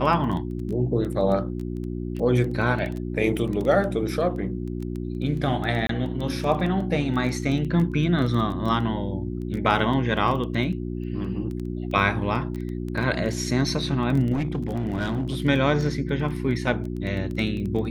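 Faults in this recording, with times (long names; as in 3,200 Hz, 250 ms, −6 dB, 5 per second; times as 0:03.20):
surface crackle 11 per second −28 dBFS
mains hum 60 Hz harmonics 6 −30 dBFS
0:05.87–0:05.89: drop-out 23 ms
0:14.32–0:15.42: clipping −21 dBFS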